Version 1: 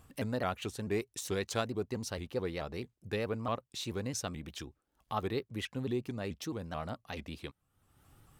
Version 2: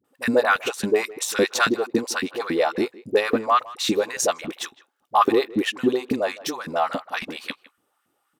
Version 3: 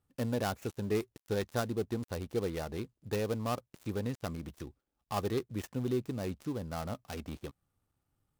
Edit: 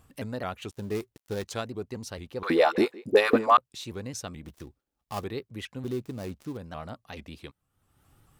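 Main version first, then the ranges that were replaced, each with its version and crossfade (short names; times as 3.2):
1
0.71–1.45 from 3
2.43–3.57 from 2
4.45–5.24 from 3
5.84–6.57 from 3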